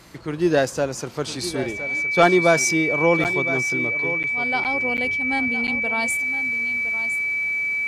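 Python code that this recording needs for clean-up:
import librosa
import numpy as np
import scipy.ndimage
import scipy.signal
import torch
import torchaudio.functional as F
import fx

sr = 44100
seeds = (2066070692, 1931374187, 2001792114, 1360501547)

y = fx.notch(x, sr, hz=2300.0, q=30.0)
y = fx.fix_interpolate(y, sr, at_s=(3.24, 4.23, 4.64, 4.97, 5.67), length_ms=8.7)
y = fx.fix_echo_inverse(y, sr, delay_ms=1014, level_db=-12.5)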